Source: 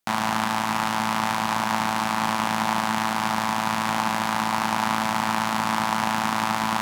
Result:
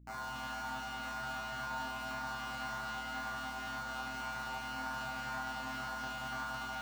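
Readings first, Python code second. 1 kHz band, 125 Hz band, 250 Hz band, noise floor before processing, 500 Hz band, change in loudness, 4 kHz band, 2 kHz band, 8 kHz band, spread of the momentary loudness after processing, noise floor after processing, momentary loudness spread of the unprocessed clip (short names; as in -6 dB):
-17.0 dB, -16.0 dB, -21.5 dB, -26 dBFS, -16.0 dB, -16.0 dB, -15.5 dB, -12.5 dB, -18.5 dB, 1 LU, -43 dBFS, 1 LU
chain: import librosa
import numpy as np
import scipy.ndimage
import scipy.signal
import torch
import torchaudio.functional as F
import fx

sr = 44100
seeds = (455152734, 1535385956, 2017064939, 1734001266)

p1 = fx.filter_lfo_notch(x, sr, shape='saw_down', hz=1.9, low_hz=940.0, high_hz=4300.0, q=1.4)
p2 = fx.comb_fb(p1, sr, f0_hz=130.0, decay_s=0.92, harmonics='all', damping=0.0, mix_pct=100)
p3 = fx.add_hum(p2, sr, base_hz=60, snr_db=15)
p4 = p3 + fx.echo_single(p3, sr, ms=286, db=-5.0, dry=0)
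p5 = np.repeat(scipy.signal.resample_poly(p4, 1, 2), 2)[:len(p4)]
p6 = fx.doppler_dist(p5, sr, depth_ms=0.11)
y = p6 * librosa.db_to_amplitude(1.0)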